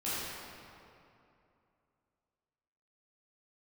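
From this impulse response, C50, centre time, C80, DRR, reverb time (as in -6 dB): -5.0 dB, 177 ms, -3.0 dB, -12.0 dB, 2.7 s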